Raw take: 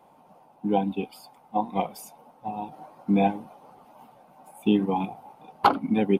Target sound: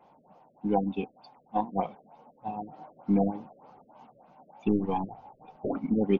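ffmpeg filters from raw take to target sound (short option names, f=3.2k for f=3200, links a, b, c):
-filter_complex "[0:a]aeval=exprs='0.531*(cos(1*acos(clip(val(0)/0.531,-1,1)))-cos(1*PI/2))+0.0075*(cos(6*acos(clip(val(0)/0.531,-1,1)))-cos(6*PI/2))+0.0119*(cos(8*acos(clip(val(0)/0.531,-1,1)))-cos(8*PI/2))':c=same,asplit=3[a][b][c];[a]afade=t=out:st=4.67:d=0.02[d];[b]asubboost=boost=4.5:cutoff=88,afade=t=in:st=4.67:d=0.02,afade=t=out:st=5.56:d=0.02[e];[c]afade=t=in:st=5.56:d=0.02[f];[d][e][f]amix=inputs=3:normalize=0,afftfilt=real='re*lt(b*sr/1024,610*pow(7100/610,0.5+0.5*sin(2*PI*3.3*pts/sr)))':imag='im*lt(b*sr/1024,610*pow(7100/610,0.5+0.5*sin(2*PI*3.3*pts/sr)))':win_size=1024:overlap=0.75,volume=-2.5dB"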